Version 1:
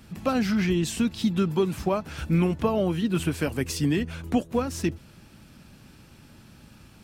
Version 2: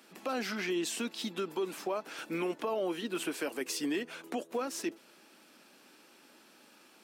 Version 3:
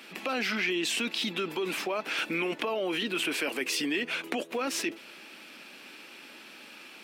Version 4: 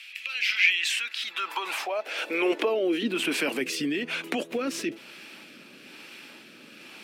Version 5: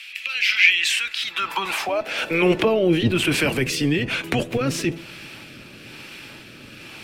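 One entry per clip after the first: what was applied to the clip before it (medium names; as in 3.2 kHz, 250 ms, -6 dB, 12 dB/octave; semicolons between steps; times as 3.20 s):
high-pass 310 Hz 24 dB/octave; peak limiter -22 dBFS, peak gain reduction 9 dB; trim -3 dB
FFT filter 930 Hz 0 dB, 1.6 kHz +3 dB, 2.4 kHz +10 dB, 6.7 kHz -2 dB; in parallel at -2 dB: compressor with a negative ratio -37 dBFS, ratio -0.5
high-pass sweep 2.5 kHz -> 120 Hz, 0.57–3.81 s; rotary cabinet horn 1.1 Hz; trim +3.5 dB
octave divider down 1 oct, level 0 dB; on a send at -17 dB: reverberation RT60 0.80 s, pre-delay 3 ms; on the sum: trim +6 dB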